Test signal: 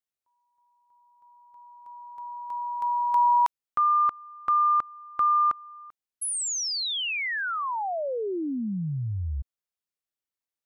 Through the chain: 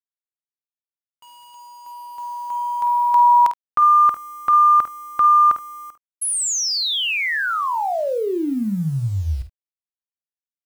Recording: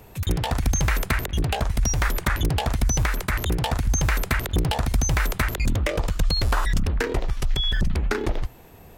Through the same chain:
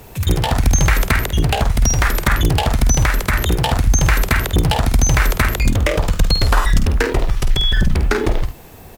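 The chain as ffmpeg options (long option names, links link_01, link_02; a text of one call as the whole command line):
ffmpeg -i in.wav -af "acrusher=bits=8:mix=0:aa=0.000001,aecho=1:1:50|73:0.335|0.119,volume=7dB" out.wav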